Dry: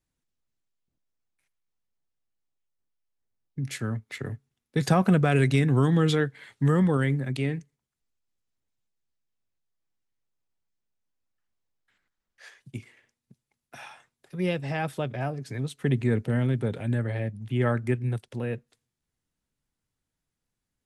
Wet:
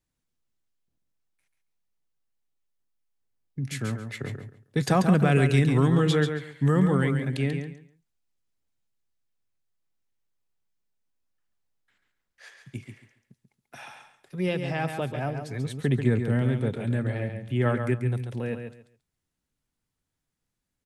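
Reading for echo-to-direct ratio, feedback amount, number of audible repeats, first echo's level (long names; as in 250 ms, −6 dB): −7.0 dB, 21%, 3, −7.0 dB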